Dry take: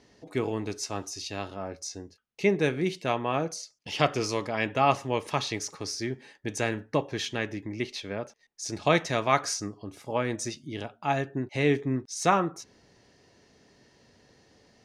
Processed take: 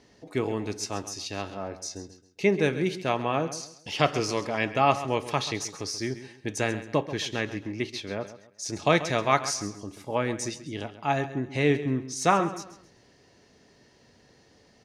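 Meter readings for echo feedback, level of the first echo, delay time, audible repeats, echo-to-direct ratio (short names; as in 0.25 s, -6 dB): 33%, -14.0 dB, 0.134 s, 3, -13.5 dB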